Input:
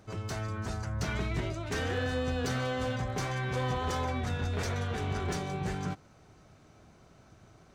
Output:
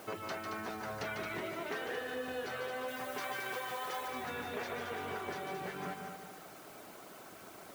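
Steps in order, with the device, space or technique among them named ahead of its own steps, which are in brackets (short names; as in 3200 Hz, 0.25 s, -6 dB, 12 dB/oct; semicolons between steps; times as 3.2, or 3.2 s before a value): baby monitor (BPF 360–3100 Hz; compressor, threshold -48 dBFS, peak gain reduction 16.5 dB; white noise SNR 17 dB); reverb removal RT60 0.88 s; 2.88–4.08 tilt +2 dB/oct; multi-head echo 74 ms, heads second and third, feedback 48%, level -6.5 dB; gain +10.5 dB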